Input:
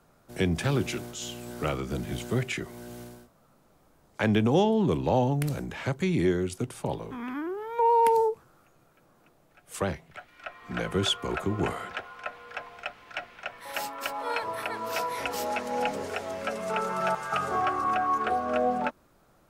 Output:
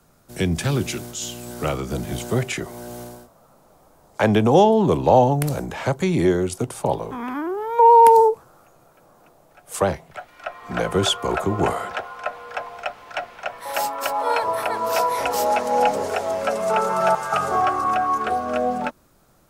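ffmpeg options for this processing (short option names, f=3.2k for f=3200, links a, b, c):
-filter_complex "[0:a]bass=f=250:g=3,treble=f=4k:g=7,acrossover=split=550|970[a][b][c];[b]dynaudnorm=f=130:g=31:m=13dB[d];[a][d][c]amix=inputs=3:normalize=0,volume=2.5dB"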